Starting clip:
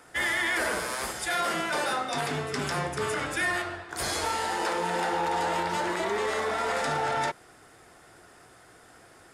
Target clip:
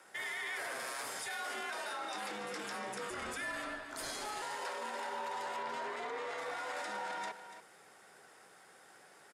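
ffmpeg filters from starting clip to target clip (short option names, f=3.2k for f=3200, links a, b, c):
-filter_complex "[0:a]asettb=1/sr,asplit=3[a][b][c];[a]atrim=end=5.564[d];[b]atrim=start=5.56:end=6.38,asetpts=PTS-STARTPTS,afade=t=in:d=0.004:c=qsin,afade=t=out:st=0.816:d=0.004:c=qsin,lowpass=f=3.4k:p=1[e];[c]atrim=start=6.376[f];[d][e]acrossfade=d=0.004:c1=hsin:c2=qsin[g];[g][f]acrossfade=d=0.004:c1=qsin:c2=hsin,alimiter=level_in=3dB:limit=-24dB:level=0:latency=1:release=19,volume=-3dB,aecho=1:1:288:0.251,afreqshift=58,highpass=f=400:p=1,asettb=1/sr,asplit=3[h][i][j];[h]atrim=end=3.104[k];[i]atrim=start=3.1:end=4.42,asetpts=PTS-STARTPTS,afade=t=in:d=0.004:c=qsin,afade=t=out:st=1.316:d=0.004:c=qsin,afreqshift=-120[l];[j]atrim=start=4.416[m];[k][l]acrossfade=d=0.004:c1=hsin:c2=qsin[n];[n][m]acrossfade=d=0.004:c1=qsin:c2=hsin,volume=-5dB"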